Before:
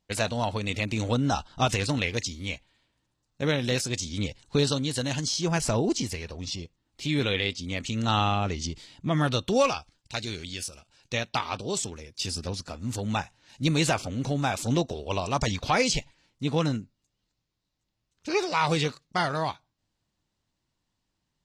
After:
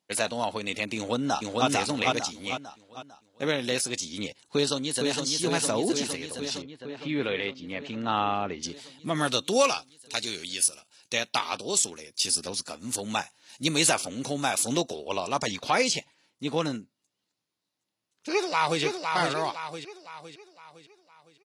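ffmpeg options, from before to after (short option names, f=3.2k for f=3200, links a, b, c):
-filter_complex "[0:a]asplit=2[a][b];[b]afade=t=in:st=0.96:d=0.01,afade=t=out:st=1.67:d=0.01,aecho=0:1:450|900|1350|1800|2250:0.891251|0.3565|0.1426|0.0570401|0.022816[c];[a][c]amix=inputs=2:normalize=0,asplit=2[d][e];[e]afade=t=in:st=4.44:d=0.01,afade=t=out:st=5.22:d=0.01,aecho=0:1:460|920|1380|1840|2300|2760|3220|3680|4140|4600|5060|5520:0.630957|0.473218|0.354914|0.266185|0.199639|0.149729|0.112297|0.0842226|0.063167|0.0473752|0.0355314|0.0266486[f];[d][f]amix=inputs=2:normalize=0,asettb=1/sr,asplit=3[g][h][i];[g]atrim=end=6.624[j];[h]atrim=start=6.62:end=8.63,asetpts=PTS-STARTPTS,afade=t=in:d=0.004:c=qsin,afade=t=out:st=2.006:d=0.004:c=qsin,lowpass=2.4k[k];[i]atrim=start=8.626[l];[j][k]acrossfade=d=0.004:c1=hsin:c2=qsin[m];[m][l]acrossfade=d=0.004:c1=qsin:c2=hsin,asettb=1/sr,asplit=3[n][o][p];[n]atrim=end=9.154[q];[o]atrim=start=9.15:end=14.96,asetpts=PTS-STARTPTS,afade=t=in:d=0.004:c=qsin,afade=t=out:st=5.806:d=0.004:c=qsin,highshelf=f=4.1k:g=8.5[r];[p]atrim=start=14.956[s];[q][r]acrossfade=d=0.004:c1=hsin:c2=qsin[t];[t][s]acrossfade=d=0.004:c1=qsin:c2=hsin,asplit=2[u][v];[v]afade=t=in:st=18.31:d=0.01,afade=t=out:st=18.82:d=0.01,aecho=0:1:510|1020|1530|2040|2550|3060:0.595662|0.268048|0.120622|0.0542797|0.0244259|0.0109916[w];[u][w]amix=inputs=2:normalize=0,highpass=240,equalizer=f=10k:w=6.4:g=12"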